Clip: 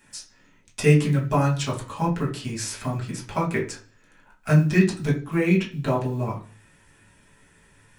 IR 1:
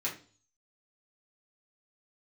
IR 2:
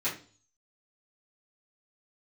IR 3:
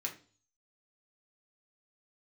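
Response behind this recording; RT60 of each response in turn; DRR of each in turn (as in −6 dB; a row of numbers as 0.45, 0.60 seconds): 1; 0.40, 0.40, 0.40 seconds; −5.5, −10.5, 0.0 decibels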